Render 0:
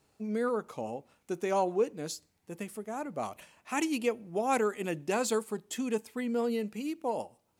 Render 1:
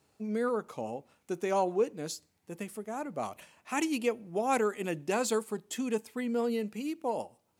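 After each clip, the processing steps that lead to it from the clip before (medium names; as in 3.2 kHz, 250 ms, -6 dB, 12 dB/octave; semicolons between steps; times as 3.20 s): high-pass 61 Hz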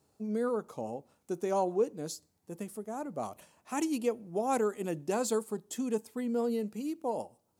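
peaking EQ 2.3 kHz -9.5 dB 1.5 oct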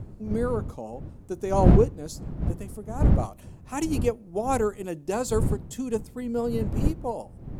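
wind noise 140 Hz -33 dBFS; upward expansion 1.5:1, over -35 dBFS; trim +8.5 dB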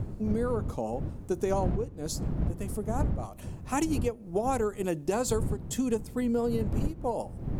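compression 20:1, threshold -29 dBFS, peak gain reduction 20.5 dB; trim +5 dB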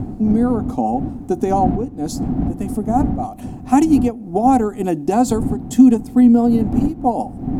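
small resonant body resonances 260/740 Hz, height 17 dB, ringing for 45 ms; trim +4.5 dB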